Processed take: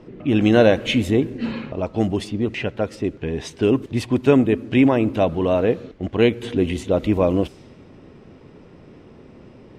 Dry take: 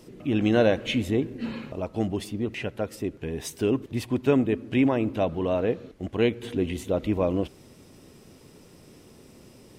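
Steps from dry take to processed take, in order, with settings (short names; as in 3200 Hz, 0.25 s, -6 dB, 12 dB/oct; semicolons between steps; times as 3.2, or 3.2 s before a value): low-pass opened by the level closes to 2000 Hz, open at -22 dBFS; gain +6.5 dB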